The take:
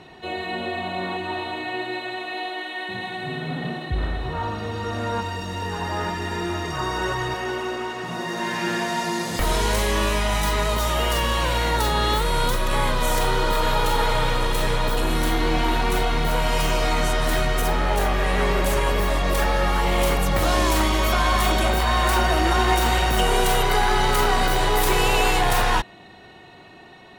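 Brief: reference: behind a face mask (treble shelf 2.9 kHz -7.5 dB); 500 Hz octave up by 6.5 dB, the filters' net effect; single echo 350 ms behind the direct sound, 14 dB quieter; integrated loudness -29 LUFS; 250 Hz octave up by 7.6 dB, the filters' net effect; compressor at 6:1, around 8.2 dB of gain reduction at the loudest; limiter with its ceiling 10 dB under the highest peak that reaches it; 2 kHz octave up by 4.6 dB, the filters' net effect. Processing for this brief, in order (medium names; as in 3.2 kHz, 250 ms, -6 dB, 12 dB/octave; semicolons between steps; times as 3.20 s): peaking EQ 250 Hz +8.5 dB; peaking EQ 500 Hz +5.5 dB; peaking EQ 2 kHz +8 dB; compression 6:1, threshold -20 dBFS; peak limiter -18.5 dBFS; treble shelf 2.9 kHz -7.5 dB; delay 350 ms -14 dB; trim -1 dB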